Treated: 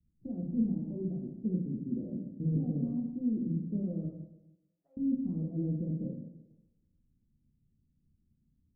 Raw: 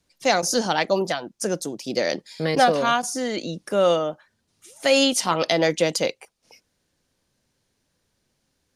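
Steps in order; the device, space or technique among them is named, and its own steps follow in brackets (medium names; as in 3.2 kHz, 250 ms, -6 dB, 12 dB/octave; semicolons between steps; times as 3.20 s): 4.05–4.97 s: high-pass 910 Hz 24 dB/octave; club heard from the street (peak limiter -13.5 dBFS, peak gain reduction 8.5 dB; low-pass 220 Hz 24 dB/octave; reverberation RT60 1.0 s, pre-delay 3 ms, DRR -2.5 dB)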